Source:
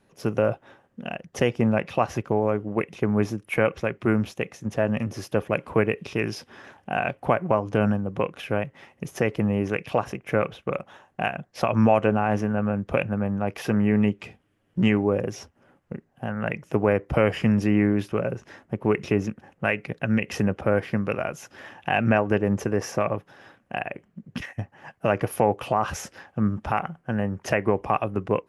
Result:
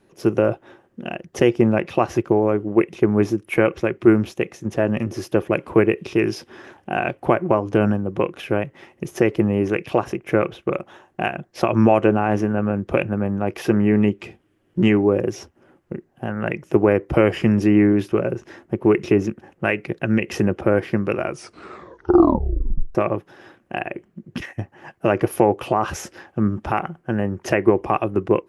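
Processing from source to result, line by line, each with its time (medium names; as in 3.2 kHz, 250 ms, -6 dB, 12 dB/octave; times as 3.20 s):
21.24 s: tape stop 1.71 s
whole clip: peaking EQ 350 Hz +12.5 dB 0.3 oct; trim +2.5 dB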